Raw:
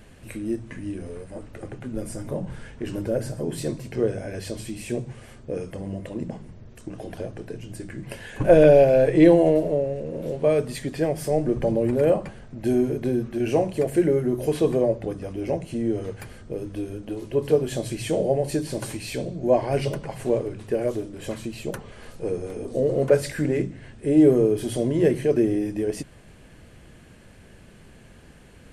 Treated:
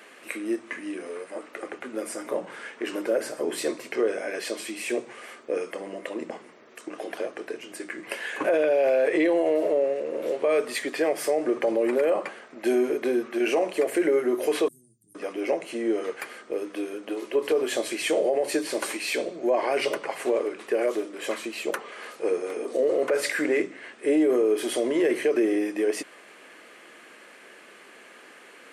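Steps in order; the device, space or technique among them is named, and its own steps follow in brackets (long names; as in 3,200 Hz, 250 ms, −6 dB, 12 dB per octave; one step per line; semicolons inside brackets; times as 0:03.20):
0:14.68–0:15.15: elliptic band-stop filter 120–9,400 Hz, stop band 60 dB
laptop speaker (high-pass filter 320 Hz 24 dB per octave; parametric band 1,200 Hz +7 dB 0.39 octaves; parametric band 2,100 Hz +4 dB 0.52 octaves; brickwall limiter −17.5 dBFS, peak gain reduction 13.5 dB)
parametric band 2,200 Hz +3.5 dB 1.6 octaves
level +2.5 dB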